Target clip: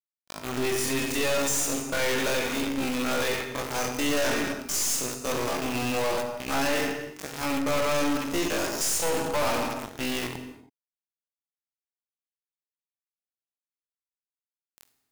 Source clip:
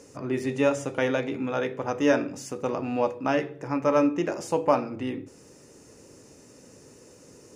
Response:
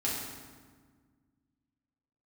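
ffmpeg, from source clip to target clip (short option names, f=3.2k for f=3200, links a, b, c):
-filter_complex "[0:a]acontrast=47,asplit=2[a][b];[b]adelay=33,volume=-12.5dB[c];[a][c]amix=inputs=2:normalize=0,crystalizer=i=7:c=0,aeval=exprs='val(0)*gte(abs(val(0)),0.0794)':c=same,atempo=0.5,asplit=2[d][e];[1:a]atrim=start_sample=2205,afade=t=out:st=0.34:d=0.01,atrim=end_sample=15435,adelay=44[f];[e][f]afir=irnorm=-1:irlink=0,volume=-15.5dB[g];[d][g]amix=inputs=2:normalize=0,aeval=exprs='(tanh(15.8*val(0)+0.55)-tanh(0.55))/15.8':c=same"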